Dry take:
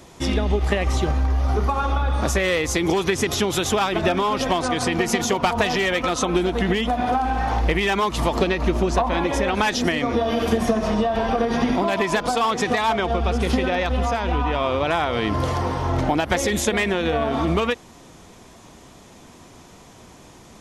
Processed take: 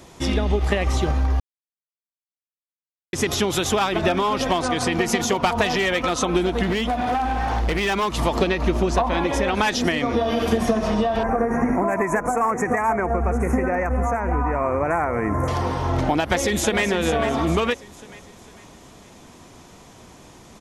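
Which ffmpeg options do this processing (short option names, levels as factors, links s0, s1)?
-filter_complex "[0:a]asettb=1/sr,asplit=3[s0][s1][s2];[s0]atrim=end=6.634[s3];[s1]atrim=start=6.63:end=8.14,asetpts=PTS-STARTPTS,afade=t=in:d=0.004:c=qsin,afade=t=out:st=1.506:d=0.004:c=qsin,asoftclip=type=hard:threshold=0.126[s4];[s2]atrim=start=8.136[s5];[s3][s4]acrossfade=d=0.004:c1=hsin:c2=qsin[s6];[s6][s5]acrossfade=d=0.004:c1=qsin:c2=hsin,asettb=1/sr,asplit=3[s7][s8][s9];[s7]atrim=end=11.234[s10];[s8]atrim=start=11.23:end=15.48,asetpts=PTS-STARTPTS,afade=t=in:d=0.004:c=qsin,afade=t=out:st=4.246:d=0.004:c=qsin,asuperstop=centerf=3800:order=8:qfactor=0.86[s11];[s9]atrim=start=15.476[s12];[s10][s11]acrossfade=d=0.004:c1=hsin:c2=qsin[s13];[s13][s12]acrossfade=d=0.004:c1=qsin:c2=hsin,asplit=2[s14][s15];[s15]afade=t=in:st=16.17:d=0.01,afade=t=out:st=16.84:d=0.01,aecho=0:1:450|900|1350|1800|2250:0.354813|0.159666|0.0718497|0.0323324|0.0145496[s16];[s14][s16]amix=inputs=2:normalize=0,asplit=3[s17][s18][s19];[s17]atrim=end=1.4,asetpts=PTS-STARTPTS,afade=t=out:st=1.396:d=0.004:c=hsin[s20];[s18]atrim=start=1.4:end=3.13,asetpts=PTS-STARTPTS,volume=0[s21];[s19]atrim=start=3.13,asetpts=PTS-STARTPTS,afade=t=in:d=0.004:c=hsin[s22];[s20][s21][s22]concat=n=3:v=0:a=1"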